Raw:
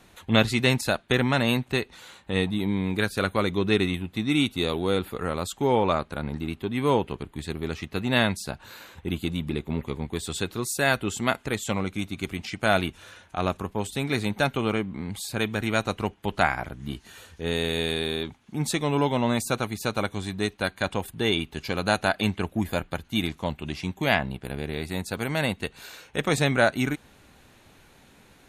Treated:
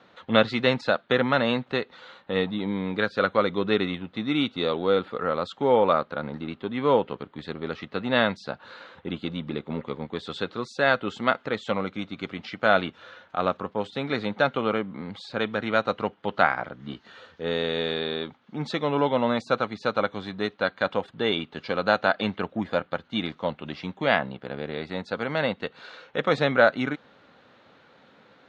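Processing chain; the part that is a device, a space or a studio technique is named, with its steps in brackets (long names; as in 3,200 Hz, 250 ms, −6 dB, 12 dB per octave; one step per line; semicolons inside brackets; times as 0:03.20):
kitchen radio (loudspeaker in its box 180–4,200 Hz, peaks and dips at 360 Hz −4 dB, 520 Hz +7 dB, 1,300 Hz +6 dB, 2,500 Hz −5 dB)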